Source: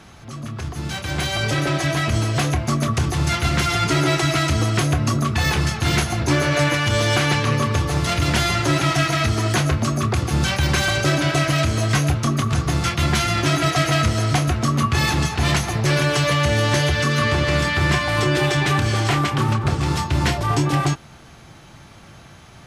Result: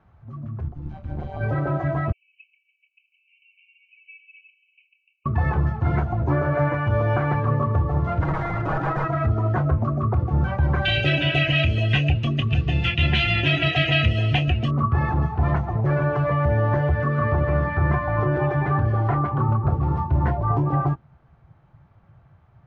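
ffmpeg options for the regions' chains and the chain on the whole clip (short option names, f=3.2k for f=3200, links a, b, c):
-filter_complex "[0:a]asettb=1/sr,asplit=3[a][b][c];[a]atrim=end=0.684[d];[b]atrim=start=0.68:end=1.41,asetpts=PTS-STARTPTS,afade=t=in:d=0.004:c=qsin,afade=t=out:st=0.726:d=0.004:c=qsin,equalizer=f=1.7k:t=o:w=0.45:g=-5.5,tremolo=f=150:d=0.889[e];[c]atrim=start=1.406[f];[d][e]acrossfade=d=0.004:c1=hsin:c2=qsin[g];[g][f]acrossfade=d=0.004:c1=qsin:c2=hsin,asettb=1/sr,asplit=3[h][i][j];[h]atrim=end=2.124[k];[i]atrim=start=2.12:end=5.26,asetpts=PTS-STARTPTS,afade=t=in:d=0.004:c=qsin,afade=t=out:st=3.136:d=0.004:c=qsin,asuperpass=centerf=2600:order=20:qfactor=3.5,aecho=1:1:2.3:0.44,atrim=end_sample=138474[l];[j]atrim=start=5.256[m];[k][l]acrossfade=d=0.004:c1=hsin:c2=qsin[n];[n][m]acrossfade=d=0.004:c1=qsin:c2=hsin,asettb=1/sr,asplit=3[o][p][q];[o]atrim=end=8.204[r];[p]atrim=start=8.2:end=9.08,asetpts=PTS-STARTPTS,afade=t=in:d=0.004:c=qsin,afade=t=out:st=0.876:d=0.004:c=qsin,highpass=f=41:p=1,aeval=exprs='(mod(4.73*val(0)+1,2)-1)/4.73':c=same,aecho=1:1:6.3:0.43,atrim=end_sample=38808[s];[q]atrim=start=9.076[t];[r][s]acrossfade=d=0.004:c1=hsin:c2=qsin[u];[u][t]acrossfade=d=0.004:c1=qsin:c2=hsin,asettb=1/sr,asplit=3[v][w][x];[v]atrim=end=10.854[y];[w]atrim=start=10.85:end=14.71,asetpts=PTS-STARTPTS,afade=t=in:d=0.004:c=qsin,afade=t=out:st=3.856:d=0.004:c=qsin,highshelf=f=1.8k:t=q:w=3:g=14,bandreject=f=2.2k:w=7.6[z];[x]atrim=start=14.706[aa];[y][z]acrossfade=d=0.004:c1=hsin:c2=qsin[ab];[ab][aa]acrossfade=d=0.004:c1=qsin:c2=hsin,lowpass=1.1k,afftdn=nr=13:nf=-29,equalizer=f=280:t=o:w=1.9:g=-8,volume=2.5dB"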